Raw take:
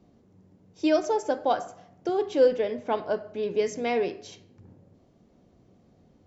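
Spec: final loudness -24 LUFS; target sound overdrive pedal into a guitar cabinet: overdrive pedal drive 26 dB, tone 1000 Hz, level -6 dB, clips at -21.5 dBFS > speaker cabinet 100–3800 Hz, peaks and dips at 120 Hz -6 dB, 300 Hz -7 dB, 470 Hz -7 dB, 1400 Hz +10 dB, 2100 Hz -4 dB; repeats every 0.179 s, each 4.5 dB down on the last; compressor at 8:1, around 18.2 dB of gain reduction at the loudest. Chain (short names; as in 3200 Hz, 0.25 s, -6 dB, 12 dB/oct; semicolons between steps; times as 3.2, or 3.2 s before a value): compressor 8:1, threshold -34 dBFS; feedback echo 0.179 s, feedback 60%, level -4.5 dB; overdrive pedal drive 26 dB, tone 1000 Hz, level -6 dB, clips at -21.5 dBFS; speaker cabinet 100–3800 Hz, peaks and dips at 120 Hz -6 dB, 300 Hz -7 dB, 470 Hz -7 dB, 1400 Hz +10 dB, 2100 Hz -4 dB; gain +10 dB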